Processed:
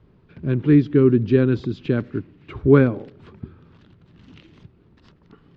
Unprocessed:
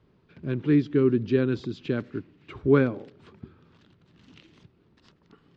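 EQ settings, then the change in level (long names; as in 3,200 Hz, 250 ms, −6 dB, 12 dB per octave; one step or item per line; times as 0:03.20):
low-pass filter 3,300 Hz 6 dB per octave
low-shelf EQ 110 Hz +9 dB
+5.0 dB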